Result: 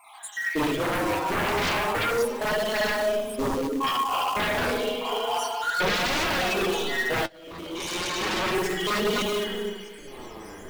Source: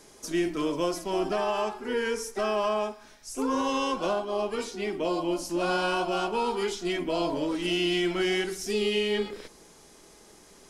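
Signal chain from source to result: random spectral dropouts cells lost 78%; 3.36–4.37 elliptic low-pass 1100 Hz, stop band 40 dB; reverb RT60 1.6 s, pre-delay 36 ms, DRR -10.5 dB; sine folder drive 16 dB, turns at -10 dBFS; 5.11–5.95 bell 460 Hz +11.5 dB 0.26 oct; 7.26–8.56 fade in; short-mantissa float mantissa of 2-bit; flange 0.32 Hz, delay 2.9 ms, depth 9.5 ms, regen +47%; gain -8 dB

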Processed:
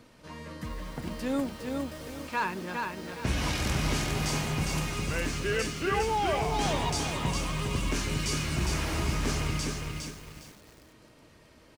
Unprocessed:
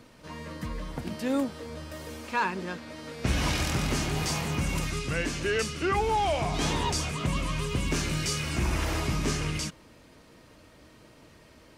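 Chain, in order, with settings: frequency-shifting echo 0.357 s, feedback 57%, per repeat -120 Hz, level -21 dB; lo-fi delay 0.409 s, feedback 35%, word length 8-bit, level -3.5 dB; gain -2.5 dB

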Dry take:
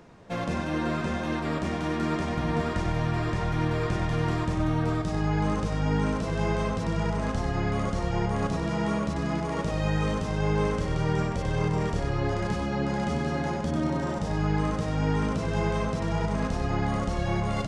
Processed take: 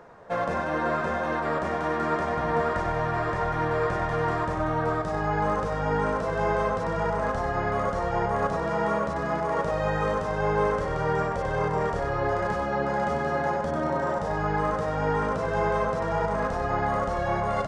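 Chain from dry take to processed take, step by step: band shelf 890 Hz +11.5 dB 2.4 oct; gain -5 dB

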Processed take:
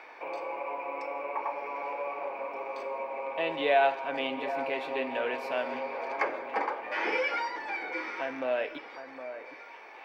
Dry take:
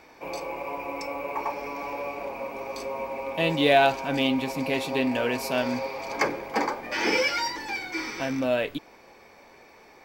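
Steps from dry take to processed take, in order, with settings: three-band isolator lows -23 dB, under 360 Hz, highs -23 dB, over 3000 Hz; in parallel at -1 dB: compressor, threshold -36 dBFS, peak gain reduction 19 dB; on the sum: echo with dull and thin repeats by turns 0.762 s, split 1900 Hz, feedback 50%, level -11.5 dB; reverb, pre-delay 3 ms, DRR 14 dB; mismatched tape noise reduction encoder only; gain -5 dB

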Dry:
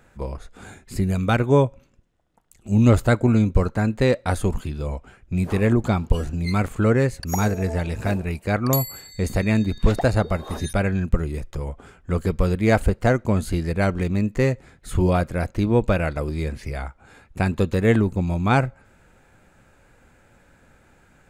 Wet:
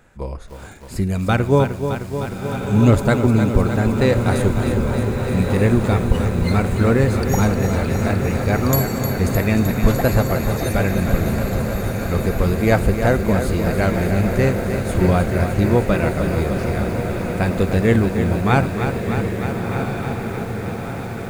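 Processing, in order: diffused feedback echo 1.359 s, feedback 65%, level -7 dB; reverb RT60 0.60 s, pre-delay 38 ms, DRR 18 dB; lo-fi delay 0.307 s, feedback 80%, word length 7-bit, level -8 dB; gain +1.5 dB

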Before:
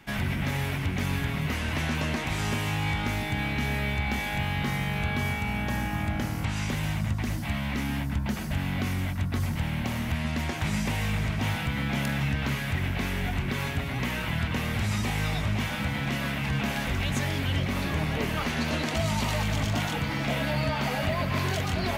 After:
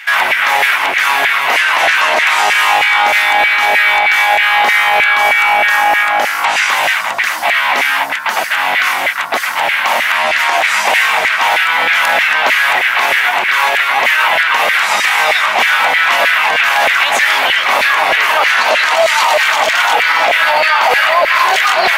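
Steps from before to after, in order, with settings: tone controls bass -11 dB, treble -4 dB; LFO high-pass saw down 3.2 Hz 610–2000 Hz; maximiser +22.5 dB; gain -1 dB

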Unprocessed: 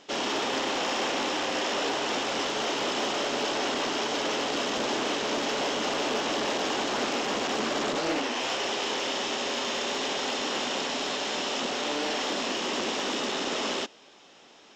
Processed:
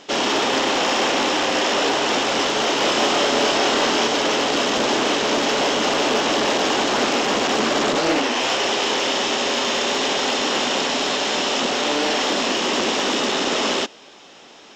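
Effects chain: 2.78–4.08 doubler 26 ms -4.5 dB; gain +9 dB

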